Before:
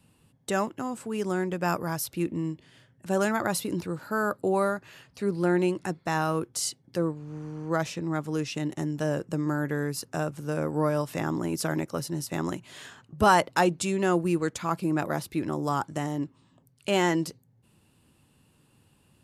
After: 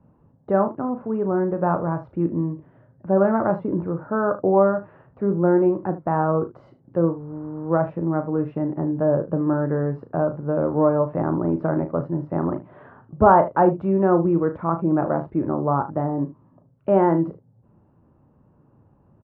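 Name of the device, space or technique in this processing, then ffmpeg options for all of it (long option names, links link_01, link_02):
under water: -filter_complex "[0:a]asettb=1/sr,asplit=3[link_01][link_02][link_03];[link_01]atrim=end=1.234[link_04];[link_02]atrim=start=1.23:end=1.67,asetpts=PTS-STARTPTS,afade=type=in:duration=0.004:curve=qsin,afade=type=out:start_time=0.436:duration=0.004:curve=qsin,lowpass=2500[link_05];[link_03]atrim=start=1.666[link_06];[link_04][link_05]acrossfade=duration=0.004:curve1=hsin:curve2=qsin[link_07];[link_07][link_06]acrossfade=duration=0.004:curve1=qsin:curve2=hsin,lowpass=frequency=1200:width=0.5412,lowpass=frequency=1200:width=1.3066,equalizer=frequency=590:width_type=o:width=0.25:gain=4.5,aecho=1:1:36|76:0.355|0.158,volume=6dB"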